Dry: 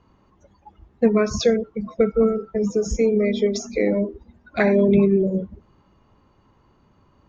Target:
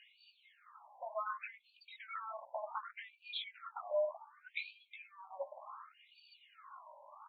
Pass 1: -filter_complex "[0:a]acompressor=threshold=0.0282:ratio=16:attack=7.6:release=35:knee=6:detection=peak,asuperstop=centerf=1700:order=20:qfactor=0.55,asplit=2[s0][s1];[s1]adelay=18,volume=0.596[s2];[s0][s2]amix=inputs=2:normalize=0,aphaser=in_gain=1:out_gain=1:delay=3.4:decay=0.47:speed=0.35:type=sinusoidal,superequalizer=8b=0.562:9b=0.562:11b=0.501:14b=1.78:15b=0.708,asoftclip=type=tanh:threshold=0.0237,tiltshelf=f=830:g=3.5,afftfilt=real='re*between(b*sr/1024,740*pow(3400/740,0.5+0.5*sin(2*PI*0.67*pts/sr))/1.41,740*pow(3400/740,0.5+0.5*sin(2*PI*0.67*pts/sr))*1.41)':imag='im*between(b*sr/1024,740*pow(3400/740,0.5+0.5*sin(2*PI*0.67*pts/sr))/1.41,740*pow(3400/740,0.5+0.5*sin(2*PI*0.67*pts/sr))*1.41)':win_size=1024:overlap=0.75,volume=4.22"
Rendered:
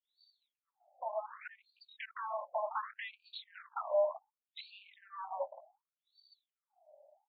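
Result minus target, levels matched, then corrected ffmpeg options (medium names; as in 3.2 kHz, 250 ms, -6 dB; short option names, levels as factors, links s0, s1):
compression: peak gain reduction -6 dB; 2 kHz band -4.5 dB
-filter_complex "[0:a]acompressor=threshold=0.0133:ratio=16:attack=7.6:release=35:knee=6:detection=peak,asplit=2[s0][s1];[s1]adelay=18,volume=0.596[s2];[s0][s2]amix=inputs=2:normalize=0,aphaser=in_gain=1:out_gain=1:delay=3.4:decay=0.47:speed=0.35:type=sinusoidal,superequalizer=8b=0.562:9b=0.562:11b=0.501:14b=1.78:15b=0.708,asoftclip=type=tanh:threshold=0.0237,tiltshelf=f=830:g=3.5,afftfilt=real='re*between(b*sr/1024,740*pow(3400/740,0.5+0.5*sin(2*PI*0.67*pts/sr))/1.41,740*pow(3400/740,0.5+0.5*sin(2*PI*0.67*pts/sr))*1.41)':imag='im*between(b*sr/1024,740*pow(3400/740,0.5+0.5*sin(2*PI*0.67*pts/sr))/1.41,740*pow(3400/740,0.5+0.5*sin(2*PI*0.67*pts/sr))*1.41)':win_size=1024:overlap=0.75,volume=4.22"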